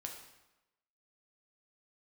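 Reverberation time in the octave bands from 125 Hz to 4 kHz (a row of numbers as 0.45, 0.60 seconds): 0.90, 0.95, 1.0, 1.0, 0.90, 0.80 seconds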